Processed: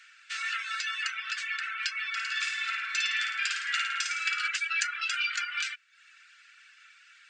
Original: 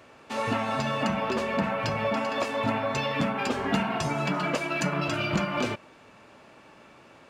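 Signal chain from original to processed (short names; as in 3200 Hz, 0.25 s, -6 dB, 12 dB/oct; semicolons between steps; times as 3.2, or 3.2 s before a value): Chebyshev high-pass 1400 Hz, order 6; reverb removal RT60 0.59 s; brick-wall FIR low-pass 8800 Hz; 2.11–4.48 flutter echo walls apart 9.3 m, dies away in 0.74 s; gain +4.5 dB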